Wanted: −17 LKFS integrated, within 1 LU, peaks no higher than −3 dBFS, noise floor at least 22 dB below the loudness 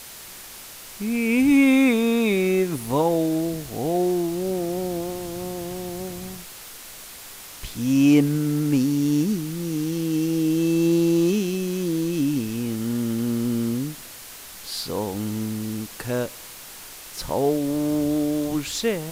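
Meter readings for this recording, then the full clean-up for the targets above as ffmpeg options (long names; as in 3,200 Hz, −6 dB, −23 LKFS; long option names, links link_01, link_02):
background noise floor −41 dBFS; target noise floor −45 dBFS; integrated loudness −23.0 LKFS; sample peak −7.0 dBFS; target loudness −17.0 LKFS
→ -af "afftdn=noise_reduction=6:noise_floor=-41"
-af "volume=6dB,alimiter=limit=-3dB:level=0:latency=1"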